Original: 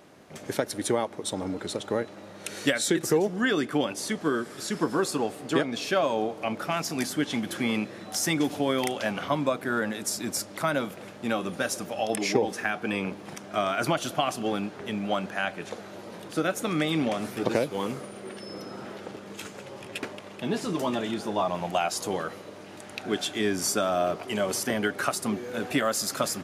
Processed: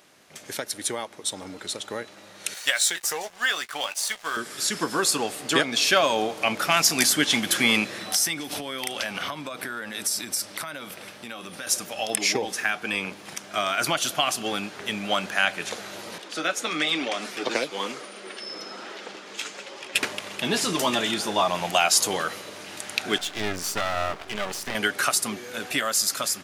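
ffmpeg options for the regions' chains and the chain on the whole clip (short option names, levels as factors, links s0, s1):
-filter_complex "[0:a]asettb=1/sr,asplit=3[s0][s1][s2];[s0]atrim=end=2.544[s3];[s1]atrim=start=2.54:end=4.37,asetpts=PTS-STARTPTS,afade=t=in:d=0.004:c=qsin,afade=t=out:st=1.826:d=0.004:c=qsin,lowshelf=f=470:t=q:w=1.5:g=-13,aeval=exprs='sgn(val(0))*max(abs(val(0))-0.00596,0)':c=same,asplit=2[s4][s5];[s5]adelay=17,volume=0.211[s6];[s4][s6]amix=inputs=2:normalize=0,atrim=end_sample=80703[s7];[s2]atrim=start=4.366[s8];[s3][s7]acrossfade=d=0.004:c1=hsin:c2=qsin[s9];[s9][s8]acrossfade=d=0.004:c1=qsin:c2=hsin,asettb=1/sr,asplit=3[s10][s11][s12];[s10]atrim=end=7.994[s13];[s11]atrim=start=7.99:end=11.67,asetpts=PTS-STARTPTS,afade=t=in:d=0.004:c=qsin,afade=t=out:st=3.676:d=0.004:c=qsin,bandreject=f=6900:w=8.6,acompressor=threshold=0.0251:ratio=16:attack=3.2:release=140:knee=1:detection=peak[s14];[s12]atrim=start=11.666[s15];[s13][s14]acrossfade=d=0.004:c1=hsin:c2=qsin[s16];[s16][s15]acrossfade=d=0.004:c1=qsin:c2=hsin,asettb=1/sr,asplit=3[s17][s18][s19];[s17]atrim=end=16.184[s20];[s18]atrim=start=16.18:end=19.95,asetpts=PTS-STARTPTS,afade=t=in:d=0.004:c=qsin,afade=t=out:st=3.766:d=0.004:c=qsin,acrossover=split=200 7700:gain=0.0891 1 0.158[s21][s22][s23];[s21][s22][s23]amix=inputs=3:normalize=0,flanger=delay=2:depth=6.6:regen=-41:speed=1.1:shape=triangular[s24];[s19]atrim=start=19.946[s25];[s20][s24]acrossfade=d=0.004:c1=hsin:c2=qsin[s26];[s26][s25]acrossfade=d=0.004:c1=qsin:c2=hsin,asettb=1/sr,asplit=3[s27][s28][s29];[s27]atrim=end=23.184[s30];[s28]atrim=start=23.18:end=24.75,asetpts=PTS-STARTPTS,afade=t=in:d=0.004:c=qsin,afade=t=out:st=1.566:d=0.004:c=qsin,lowpass=f=2000:p=1,aeval=exprs='max(val(0),0)':c=same[s31];[s29]atrim=start=24.746[s32];[s30][s31]acrossfade=d=0.004:c1=hsin:c2=qsin[s33];[s33][s32]acrossfade=d=0.004:c1=qsin:c2=hsin,tiltshelf=f=1200:g=-7.5,dynaudnorm=f=690:g=7:m=3.76,volume=0.794"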